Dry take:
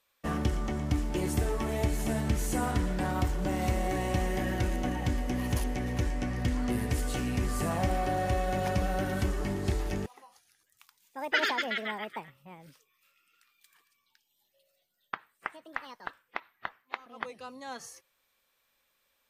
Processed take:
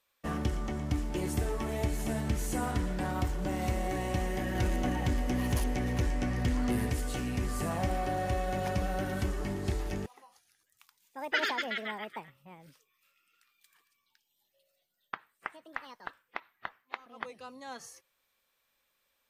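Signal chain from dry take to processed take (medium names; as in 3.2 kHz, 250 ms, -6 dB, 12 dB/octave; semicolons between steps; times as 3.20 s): 4.55–6.90 s: waveshaping leveller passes 1; trim -2.5 dB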